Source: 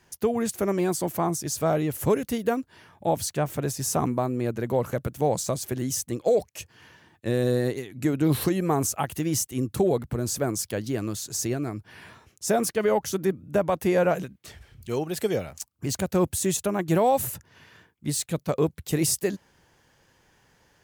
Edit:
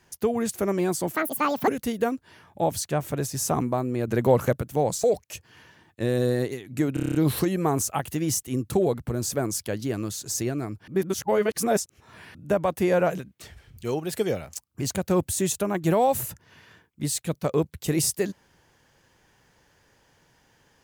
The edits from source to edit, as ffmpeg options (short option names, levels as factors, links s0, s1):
-filter_complex "[0:a]asplit=15[s0][s1][s2][s3][s4][s5][s6][s7][s8][s9][s10][s11][s12][s13][s14];[s0]atrim=end=1.154[s15];[s1]atrim=start=1.15:end=2.13,asetpts=PTS-STARTPTS,asetrate=82026,aresample=44100,atrim=end_sample=23235,asetpts=PTS-STARTPTS[s16];[s2]atrim=start=2.126:end=4.532[s17];[s3]atrim=start=4.528:end=4.982,asetpts=PTS-STARTPTS,volume=1.88[s18];[s4]atrim=start=4.978:end=5.492[s19];[s5]atrim=start=6.288:end=8.222[s20];[s6]atrim=start=8.188:end=8.222[s21];[s7]atrim=start=8.188:end=8.222[s22];[s8]atrim=start=8.188:end=8.222[s23];[s9]atrim=start=8.188:end=8.222[s24];[s10]atrim=start=8.188:end=8.222[s25];[s11]atrim=start=8.188:end=8.222[s26];[s12]atrim=start=8.188:end=11.922[s27];[s13]atrim=start=11.918:end=13.392,asetpts=PTS-STARTPTS,areverse[s28];[s14]atrim=start=13.388[s29];[s15][s16]acrossfade=d=0.004:c1=hsin:c2=hsin[s30];[s30][s17]acrossfade=d=0.004:c1=hsin:c2=hsin[s31];[s31][s18]acrossfade=d=0.004:c1=hsin:c2=hsin[s32];[s32][s19]acrossfade=d=0.004:c1=hsin:c2=hsin[s33];[s33][s20]acrossfade=d=0.004:c1=hsin:c2=hsin[s34];[s34][s21]acrossfade=d=0.004:c1=hsin:c2=hsin[s35];[s35][s22]acrossfade=d=0.004:c1=hsin:c2=hsin[s36];[s36][s23]acrossfade=d=0.004:c1=hsin:c2=hsin[s37];[s37][s24]acrossfade=d=0.004:c1=hsin:c2=hsin[s38];[s38][s25]acrossfade=d=0.004:c1=hsin:c2=hsin[s39];[s39][s26]acrossfade=d=0.004:c1=hsin:c2=hsin[s40];[s40][s27]acrossfade=d=0.004:c1=hsin:c2=hsin[s41];[s41][s28]acrossfade=d=0.004:c1=hsin:c2=hsin[s42];[s42][s29]acrossfade=d=0.004:c1=hsin:c2=hsin"